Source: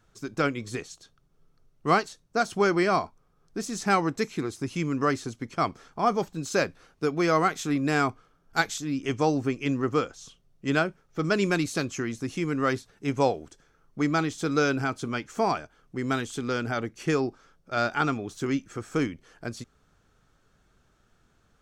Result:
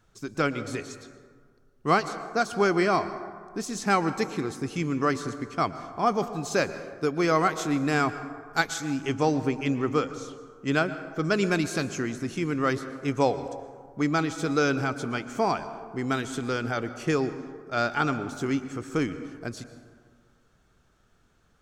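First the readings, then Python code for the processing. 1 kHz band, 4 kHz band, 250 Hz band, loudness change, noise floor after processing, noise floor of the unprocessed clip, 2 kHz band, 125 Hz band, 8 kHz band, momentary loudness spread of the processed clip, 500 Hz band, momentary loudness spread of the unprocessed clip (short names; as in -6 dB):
+0.5 dB, 0.0 dB, +0.5 dB, 0.0 dB, -63 dBFS, -66 dBFS, +0.5 dB, +0.5 dB, 0.0 dB, 12 LU, +0.5 dB, 11 LU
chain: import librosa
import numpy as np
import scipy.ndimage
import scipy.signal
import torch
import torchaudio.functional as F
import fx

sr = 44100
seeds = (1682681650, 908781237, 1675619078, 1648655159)

y = fx.rev_plate(x, sr, seeds[0], rt60_s=1.8, hf_ratio=0.4, predelay_ms=105, drr_db=12.0)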